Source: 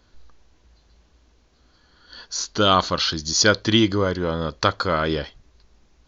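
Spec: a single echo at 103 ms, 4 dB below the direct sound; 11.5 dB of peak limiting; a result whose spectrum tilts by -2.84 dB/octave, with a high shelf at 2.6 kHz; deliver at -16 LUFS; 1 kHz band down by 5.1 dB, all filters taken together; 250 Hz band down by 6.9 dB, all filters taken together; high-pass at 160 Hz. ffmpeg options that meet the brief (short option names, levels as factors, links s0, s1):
-af "highpass=160,equalizer=f=250:t=o:g=-8.5,equalizer=f=1000:t=o:g=-5.5,highshelf=f=2600:g=-5,alimiter=limit=0.158:level=0:latency=1,aecho=1:1:103:0.631,volume=3.76"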